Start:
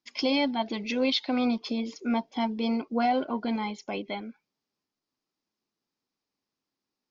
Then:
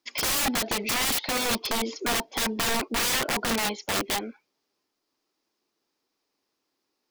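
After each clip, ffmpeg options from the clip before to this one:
-filter_complex "[0:a]acrossover=split=6100[a][b];[b]acompressor=threshold=-55dB:ratio=4:attack=1:release=60[c];[a][c]amix=inputs=2:normalize=0,lowshelf=f=260:t=q:w=1.5:g=-7,aeval=exprs='(mod(26.6*val(0)+1,2)-1)/26.6':c=same,volume=8dB"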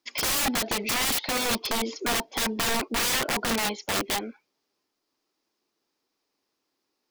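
-af anull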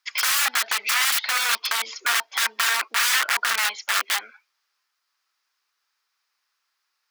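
-af "highpass=f=1.4k:t=q:w=2,volume=3.5dB"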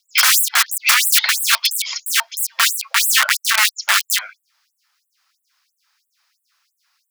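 -af "alimiter=level_in=12dB:limit=-1dB:release=50:level=0:latency=1,afftfilt=real='re*gte(b*sr/1024,500*pow(7800/500,0.5+0.5*sin(2*PI*3*pts/sr)))':imag='im*gte(b*sr/1024,500*pow(7800/500,0.5+0.5*sin(2*PI*3*pts/sr)))':win_size=1024:overlap=0.75,volume=-1dB"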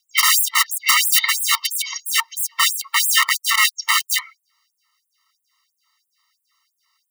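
-af "afftfilt=real='re*eq(mod(floor(b*sr/1024/450),2),0)':imag='im*eq(mod(floor(b*sr/1024/450),2),0)':win_size=1024:overlap=0.75,volume=1.5dB"

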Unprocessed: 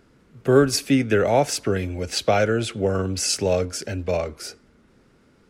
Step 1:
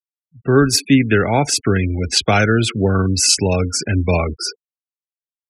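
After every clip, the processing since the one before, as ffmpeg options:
-af "afftfilt=real='re*gte(hypot(re,im),0.0251)':imag='im*gte(hypot(re,im),0.0251)':win_size=1024:overlap=0.75,equalizer=f=560:t=o:w=0.8:g=-12,dynaudnorm=f=130:g=7:m=14dB"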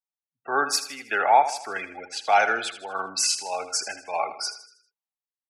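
-filter_complex "[0:a]highpass=f=800:t=q:w=4.9,tremolo=f=1.6:d=0.76,asplit=2[a][b];[b]aecho=0:1:79|158|237|316|395:0.251|0.113|0.0509|0.0229|0.0103[c];[a][c]amix=inputs=2:normalize=0,volume=-5.5dB"

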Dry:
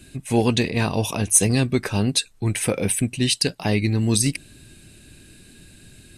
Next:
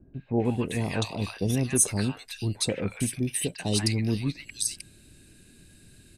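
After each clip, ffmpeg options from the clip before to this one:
-filter_complex "[0:a]acrossover=split=930|2900[a][b][c];[b]adelay=140[d];[c]adelay=450[e];[a][d][e]amix=inputs=3:normalize=0,volume=-6dB"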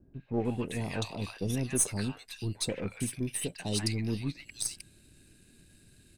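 -af "aeval=exprs='if(lt(val(0),0),0.708*val(0),val(0))':c=same,volume=-4dB"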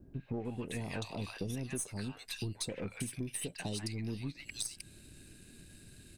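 -af "acompressor=threshold=-39dB:ratio=12,volume=4dB"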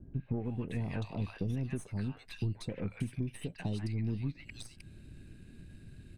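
-af "bass=f=250:g=8,treble=f=4k:g=-14,volume=-1.5dB"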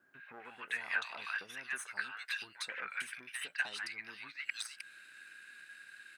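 -af "highpass=f=1.5k:t=q:w=4.3,volume=6.5dB"

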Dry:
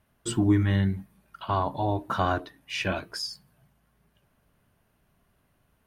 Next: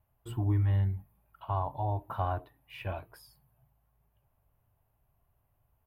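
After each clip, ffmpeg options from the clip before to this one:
-af "firequalizer=gain_entry='entry(120,0);entry(180,-15);entry(820,-2);entry(1500,-14);entry(2600,-12);entry(6000,-30);entry(12000,-1)':delay=0.05:min_phase=1,volume=-1.5dB"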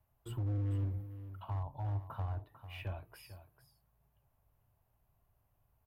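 -filter_complex "[0:a]acrossover=split=160[a][b];[b]acompressor=threshold=-43dB:ratio=6[c];[a][c]amix=inputs=2:normalize=0,asoftclip=type=hard:threshold=-30.5dB,aecho=1:1:447:0.237,volume=-2dB"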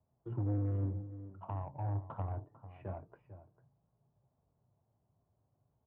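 -af "flanger=delay=4.2:depth=7.5:regen=-67:speed=0.67:shape=sinusoidal,adynamicsmooth=sensitivity=4:basefreq=670,highpass=140,lowpass=2.2k,volume=10.5dB"

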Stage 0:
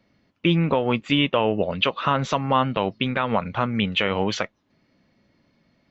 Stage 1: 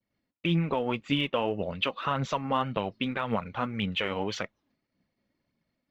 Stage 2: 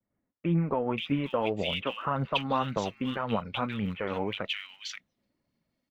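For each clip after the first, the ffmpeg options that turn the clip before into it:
-af "agate=range=-33dB:threshold=-56dB:ratio=3:detection=peak,aphaser=in_gain=1:out_gain=1:delay=4.3:decay=0.38:speed=1.8:type=triangular,volume=-8dB"
-filter_complex "[0:a]acrossover=split=1900[a][b];[b]adelay=530[c];[a][c]amix=inputs=2:normalize=0"

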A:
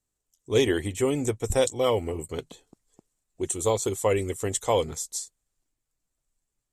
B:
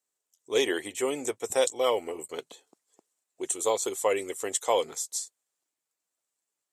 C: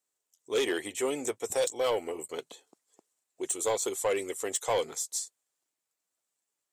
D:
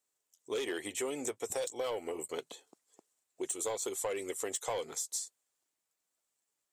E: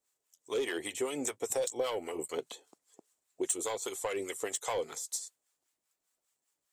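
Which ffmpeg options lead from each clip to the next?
-af "highpass=440"
-af "asoftclip=type=tanh:threshold=-21dB"
-af "acompressor=threshold=-33dB:ratio=6"
-filter_complex "[0:a]acrossover=split=800[a][b];[a]aeval=exprs='val(0)*(1-0.7/2+0.7/2*cos(2*PI*5*n/s))':c=same[c];[b]aeval=exprs='val(0)*(1-0.7/2-0.7/2*cos(2*PI*5*n/s))':c=same[d];[c][d]amix=inputs=2:normalize=0,volume=5.5dB"

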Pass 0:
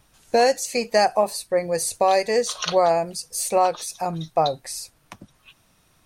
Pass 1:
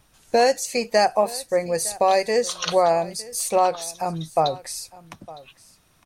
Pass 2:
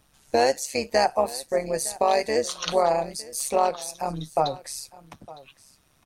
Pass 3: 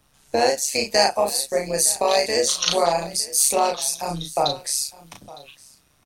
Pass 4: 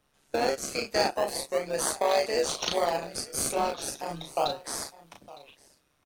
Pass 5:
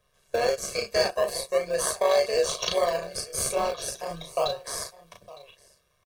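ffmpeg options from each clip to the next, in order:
-af "aecho=1:1:909:0.1"
-af "tremolo=f=140:d=0.667"
-filter_complex "[0:a]asplit=2[a][b];[b]adelay=35,volume=-3.5dB[c];[a][c]amix=inputs=2:normalize=0,acrossover=split=200|2800[d][e][f];[f]dynaudnorm=f=120:g=11:m=10.5dB[g];[d][e][g]amix=inputs=3:normalize=0"
-filter_complex "[0:a]asplit=2[a][b];[b]acrusher=samples=32:mix=1:aa=0.000001:lfo=1:lforange=32:lforate=0.36,volume=-6.5dB[c];[a][c]amix=inputs=2:normalize=0,bass=f=250:g=-8,treble=f=4k:g=-5,volume=-7.5dB"
-af "aecho=1:1:1.8:0.96,volume=-1.5dB"

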